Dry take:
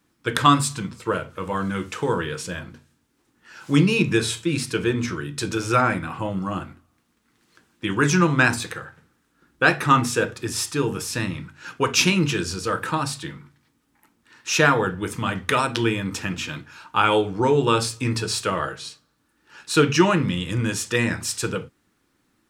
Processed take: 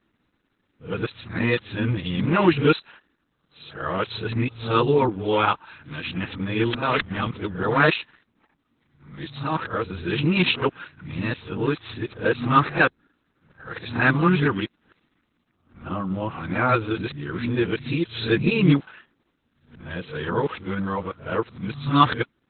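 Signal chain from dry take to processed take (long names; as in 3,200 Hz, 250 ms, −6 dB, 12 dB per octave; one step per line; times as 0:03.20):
played backwards from end to start
Opus 8 kbit/s 48,000 Hz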